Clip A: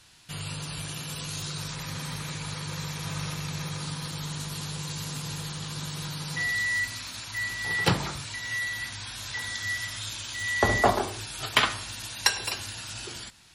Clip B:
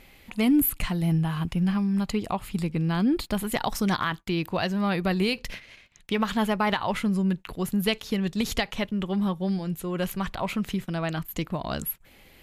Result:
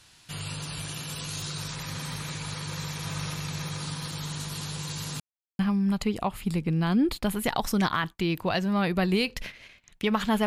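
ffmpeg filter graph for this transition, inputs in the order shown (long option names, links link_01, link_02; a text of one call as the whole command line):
ffmpeg -i cue0.wav -i cue1.wav -filter_complex "[0:a]apad=whole_dur=10.46,atrim=end=10.46,asplit=2[link_01][link_02];[link_01]atrim=end=5.2,asetpts=PTS-STARTPTS,afade=type=out:start_time=5.196:duration=0.004:curve=hsin[link_03];[link_02]atrim=start=5.2:end=5.59,asetpts=PTS-STARTPTS,volume=0[link_04];[1:a]atrim=start=1.67:end=6.54,asetpts=PTS-STARTPTS,afade=type=in:duration=0.004:curve=hsin[link_05];[link_03][link_04][link_05]concat=n=3:v=0:a=1" out.wav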